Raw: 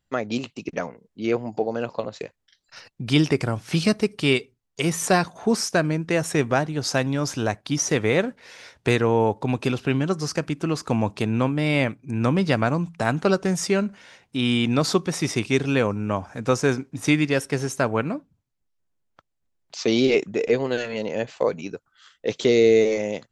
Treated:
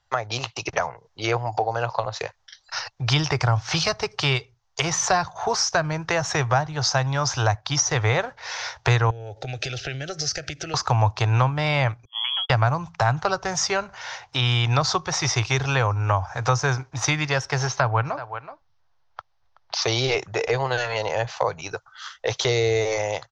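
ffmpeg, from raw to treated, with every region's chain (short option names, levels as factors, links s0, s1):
-filter_complex "[0:a]asettb=1/sr,asplit=3[s0][s1][s2];[s0]atrim=end=9.104[s3];[s1]atrim=start=9.1:end=10.74,asetpts=PTS-STARTPTS,afade=t=in:d=0.004:c=qsin,afade=t=out:st=1.636:d=0.004:c=qsin,acompressor=threshold=0.0316:ratio=8:attack=3.2:release=140:knee=1:detection=peak,asuperstop=centerf=1000:order=4:qfactor=0.94[s4];[s2]atrim=start=10.736[s5];[s3][s4]acrossfade=d=0.004:c1=hsin:c2=qsin[s6];[s6][s5]acrossfade=d=0.004:c1=qsin:c2=hsin,asettb=1/sr,asplit=3[s7][s8][s9];[s7]atrim=end=12.054[s10];[s8]atrim=start=12.05:end=12.5,asetpts=PTS-STARTPTS,afade=t=in:d=0.004:c=qsin,afade=t=out:st=0.446:d=0.004:c=qsin,agate=range=0.00398:threshold=0.0708:ratio=16:release=100:detection=peak,acompressor=threshold=0.0158:ratio=3:attack=3.2:release=140:knee=1:detection=peak,lowpass=f=3000:t=q:w=0.5098,lowpass=f=3000:t=q:w=0.6013,lowpass=f=3000:t=q:w=0.9,lowpass=f=3000:t=q:w=2.563,afreqshift=-3500[s11];[s9]atrim=start=12.496[s12];[s10][s11]acrossfade=d=0.004:c1=hsin:c2=qsin[s13];[s13][s12]acrossfade=d=0.004:c1=qsin:c2=hsin,asettb=1/sr,asplit=3[s14][s15][s16];[s14]atrim=end=17.674[s17];[s15]atrim=start=17.67:end=19.82,asetpts=PTS-STARTPTS,afade=t=in:d=0.004:c=qsin,afade=t=out:st=2.146:d=0.004:c=qsin,lowpass=f=5100:w=0.5412,lowpass=f=5100:w=1.3066,aecho=1:1:376:0.0944,atrim=end_sample=94815[s18];[s16]atrim=start=19.816[s19];[s17][s18]acrossfade=d=0.004:c1=hsin:c2=qsin[s20];[s20][s19]acrossfade=d=0.004:c1=qsin:c2=hsin,dynaudnorm=f=260:g=3:m=1.68,firequalizer=gain_entry='entry(120,0);entry(210,-26);entry(340,-10);entry(790,11);entry(2400,1);entry(3500,4);entry(6100,8);entry(9400,-24)':delay=0.05:min_phase=1,acrossover=split=230[s21][s22];[s22]acompressor=threshold=0.0355:ratio=3[s23];[s21][s23]amix=inputs=2:normalize=0,volume=1.78"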